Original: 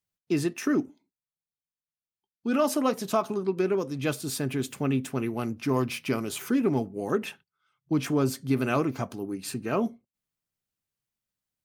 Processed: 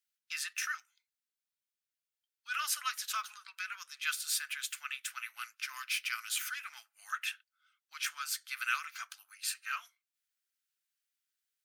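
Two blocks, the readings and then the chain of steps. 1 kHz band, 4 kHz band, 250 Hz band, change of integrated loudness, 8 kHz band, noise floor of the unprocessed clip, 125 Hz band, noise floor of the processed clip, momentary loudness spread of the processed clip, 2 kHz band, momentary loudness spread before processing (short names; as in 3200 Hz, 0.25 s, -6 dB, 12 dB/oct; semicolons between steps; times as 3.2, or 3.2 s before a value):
-8.0 dB, +2.0 dB, under -40 dB, -8.5 dB, +1.5 dB, under -85 dBFS, under -40 dB, under -85 dBFS, 10 LU, +1.5 dB, 8 LU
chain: elliptic high-pass 1400 Hz, stop band 70 dB; gain +2 dB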